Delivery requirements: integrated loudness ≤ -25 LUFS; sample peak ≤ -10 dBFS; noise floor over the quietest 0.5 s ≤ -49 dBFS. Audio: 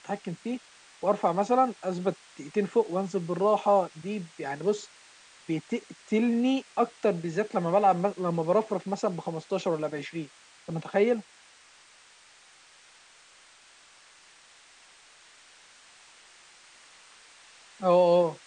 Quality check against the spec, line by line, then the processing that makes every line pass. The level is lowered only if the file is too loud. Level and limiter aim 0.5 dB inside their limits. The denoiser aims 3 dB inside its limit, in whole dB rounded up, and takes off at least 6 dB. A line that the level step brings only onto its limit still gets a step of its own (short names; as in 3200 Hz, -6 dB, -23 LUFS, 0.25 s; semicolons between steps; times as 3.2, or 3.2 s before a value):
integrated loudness -28.0 LUFS: OK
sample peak -11.0 dBFS: OK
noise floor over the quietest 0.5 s -56 dBFS: OK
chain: none